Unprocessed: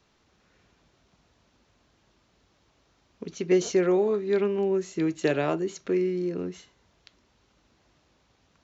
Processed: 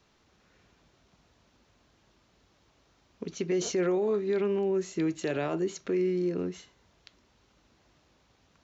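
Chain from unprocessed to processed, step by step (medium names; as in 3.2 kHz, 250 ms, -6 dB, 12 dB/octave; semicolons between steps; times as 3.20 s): peak limiter -21 dBFS, peak gain reduction 9 dB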